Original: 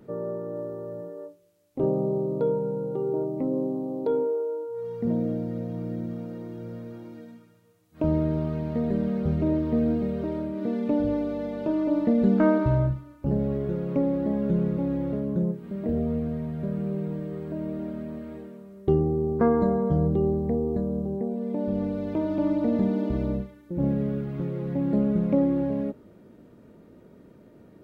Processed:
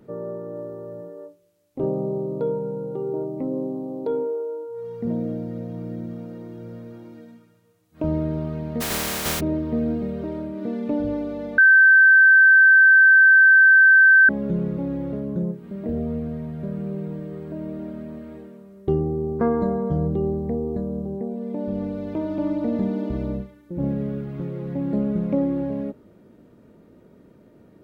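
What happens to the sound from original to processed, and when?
8.80–9.39 s: spectral contrast reduction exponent 0.21
11.58–14.29 s: bleep 1.55 kHz -9 dBFS

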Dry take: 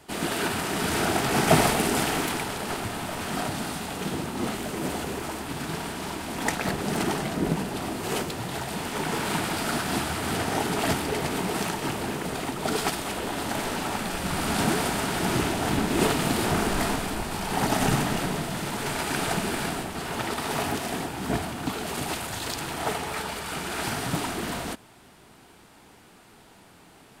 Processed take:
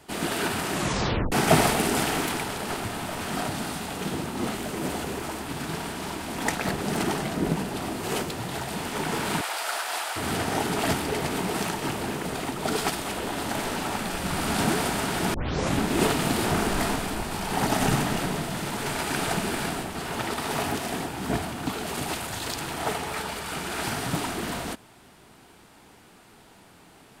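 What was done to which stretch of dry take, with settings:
0.73 s: tape stop 0.59 s
9.41–10.16 s: high-pass 580 Hz 24 dB/octave
15.34 s: tape start 0.43 s

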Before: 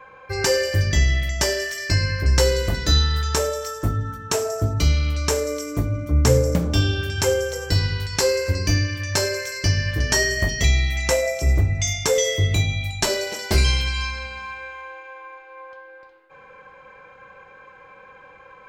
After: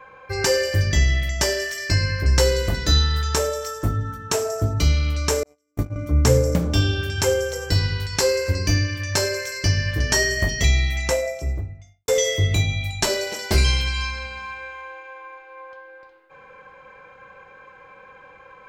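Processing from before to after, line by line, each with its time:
5.43–5.96 s: gate -22 dBFS, range -43 dB
10.84–12.08 s: studio fade out

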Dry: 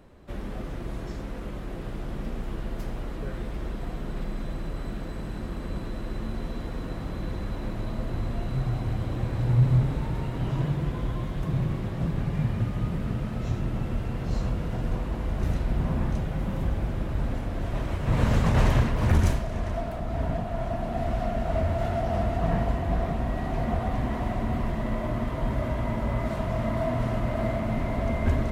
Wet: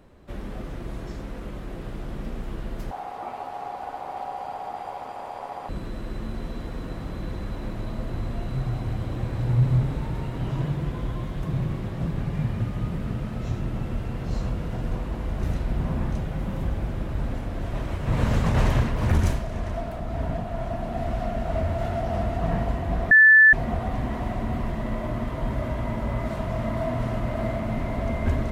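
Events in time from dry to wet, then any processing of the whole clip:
2.91–5.69 s: ring modulator 770 Hz
23.11–23.53 s: bleep 1.75 kHz -9.5 dBFS

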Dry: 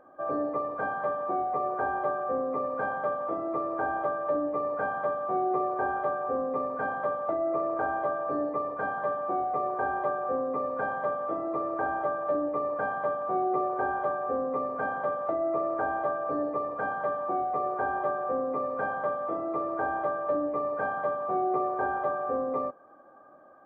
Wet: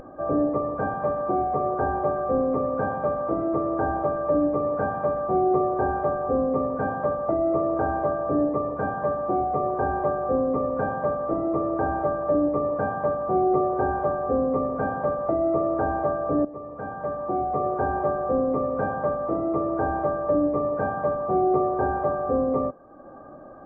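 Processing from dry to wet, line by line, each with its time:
0.54–5.27 s: feedback echo behind a high-pass 125 ms, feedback 75%, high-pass 2.1 kHz, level -8 dB
16.45–17.62 s: fade in, from -15 dB
whole clip: tilt EQ -4.5 dB/octave; upward compressor, threshold -38 dBFS; trim +2 dB

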